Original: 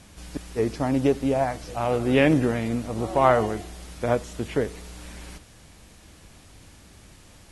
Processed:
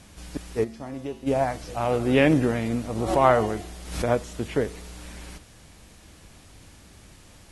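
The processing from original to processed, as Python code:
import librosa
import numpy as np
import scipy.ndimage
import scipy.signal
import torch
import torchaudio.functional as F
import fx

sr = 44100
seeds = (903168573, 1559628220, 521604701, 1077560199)

y = fx.comb_fb(x, sr, f0_hz=75.0, decay_s=0.62, harmonics='odd', damping=0.0, mix_pct=80, at=(0.63, 1.26), fade=0.02)
y = fx.pre_swell(y, sr, db_per_s=83.0, at=(2.95, 4.05))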